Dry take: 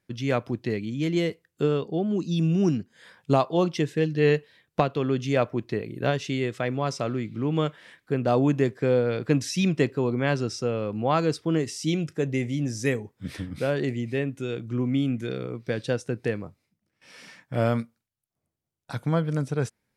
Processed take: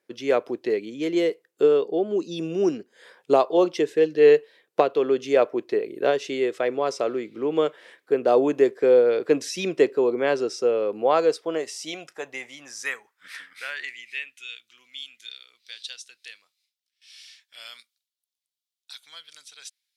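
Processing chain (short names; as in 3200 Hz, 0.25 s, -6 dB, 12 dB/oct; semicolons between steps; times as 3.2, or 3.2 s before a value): high-pass sweep 420 Hz -> 3600 Hz, 10.98–14.91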